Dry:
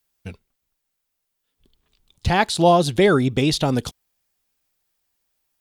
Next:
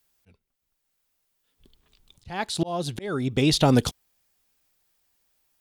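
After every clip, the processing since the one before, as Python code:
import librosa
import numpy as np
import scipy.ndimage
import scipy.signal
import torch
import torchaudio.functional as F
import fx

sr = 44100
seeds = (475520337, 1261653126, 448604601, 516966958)

y = fx.auto_swell(x, sr, attack_ms=782.0)
y = F.gain(torch.from_numpy(y), 3.0).numpy()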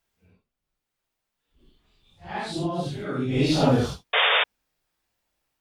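y = fx.phase_scramble(x, sr, seeds[0], window_ms=200)
y = fx.high_shelf(y, sr, hz=5300.0, db=-11.5)
y = fx.spec_paint(y, sr, seeds[1], shape='noise', start_s=4.13, length_s=0.31, low_hz=420.0, high_hz=3700.0, level_db=-20.0)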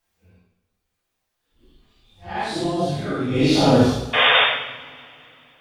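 y = fx.rev_double_slope(x, sr, seeds[2], early_s=0.83, late_s=3.3, knee_db=-22, drr_db=-4.0)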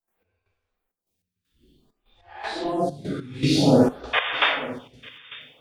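y = fx.step_gate(x, sr, bpm=197, pattern='.xx...xxxxxx.', floor_db=-12.0, edge_ms=4.5)
y = y + 10.0 ** (-17.5 / 20.0) * np.pad(y, (int(898 * sr / 1000.0), 0))[:len(y)]
y = fx.stagger_phaser(y, sr, hz=0.53)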